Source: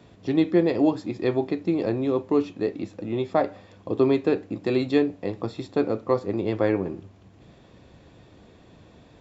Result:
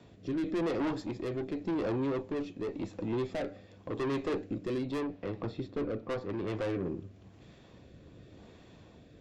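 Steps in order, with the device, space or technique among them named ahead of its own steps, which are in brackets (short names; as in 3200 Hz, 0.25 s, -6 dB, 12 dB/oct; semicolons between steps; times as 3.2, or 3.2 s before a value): 4.78–6.48 air absorption 140 m; overdriven rotary cabinet (tube stage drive 28 dB, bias 0.35; rotary speaker horn 0.9 Hz)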